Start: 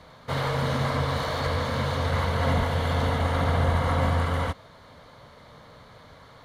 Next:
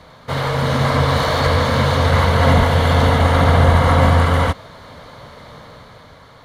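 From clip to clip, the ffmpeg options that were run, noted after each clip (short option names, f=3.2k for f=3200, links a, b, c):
-af "dynaudnorm=f=120:g=13:m=5dB,volume=6dB"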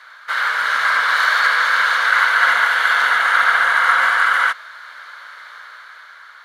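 -af "highpass=f=1.5k:t=q:w=5.7,volume=-1dB"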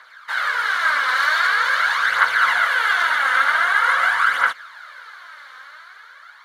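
-af "aphaser=in_gain=1:out_gain=1:delay=4:decay=0.51:speed=0.45:type=triangular,volume=-4dB"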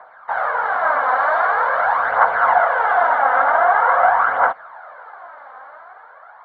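-af "lowpass=f=750:t=q:w=4.9,volume=7dB"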